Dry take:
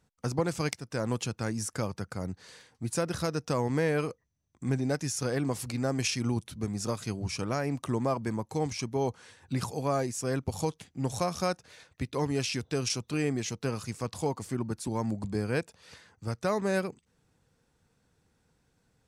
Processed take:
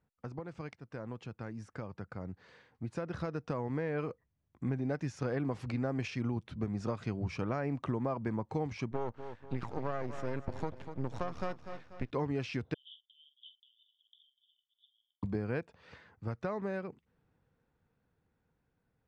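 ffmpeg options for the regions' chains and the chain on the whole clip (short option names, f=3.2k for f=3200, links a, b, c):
-filter_complex "[0:a]asettb=1/sr,asplit=3[a][b][c];[a]atrim=end=8.914[d];[b]atrim=start=8.91:end=12.11,asetpts=PTS-STARTPTS,afade=t=in:d=0.004:c=qsin,afade=t=out:st=3.196:d=0.004:c=qsin,aeval=exprs='max(val(0),0)':c=same,aecho=1:1:243|486|729|972:0.2|0.0858|0.0369|0.0159,atrim=end_sample=141120[e];[c]atrim=start=12.106[f];[d][e]acrossfade=d=0.004:c1=hsin:c2=qsin[g];[g][f]acrossfade=d=0.004:c1=qsin:c2=hsin,asettb=1/sr,asplit=3[h][i][j];[h]atrim=end=12.744[k];[i]atrim=start=12.74:end=15.23,asetpts=PTS-STARTPTS,afade=t=in:d=0.004:c=qsin,afade=t=out:st=2.486:d=0.004:c=qsin,asuperpass=centerf=3300:order=12:qfactor=5.1,asplit=2[l][m];[m]adelay=45,volume=-11.5dB[n];[l][n]amix=inputs=2:normalize=0,atrim=end_sample=109809[o];[j]atrim=start=15.226[p];[k][o]acrossfade=d=0.004:c1=hsin:c2=qsin[q];[q][p]acrossfade=d=0.004:c1=qsin:c2=hsin,acompressor=threshold=-31dB:ratio=6,lowpass=2.3k,dynaudnorm=f=550:g=11:m=8.5dB,volume=-7.5dB"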